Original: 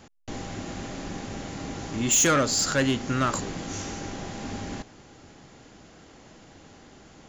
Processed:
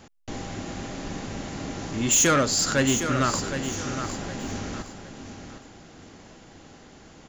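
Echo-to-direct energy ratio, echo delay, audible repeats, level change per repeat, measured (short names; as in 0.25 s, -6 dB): -8.5 dB, 0.761 s, 3, -10.5 dB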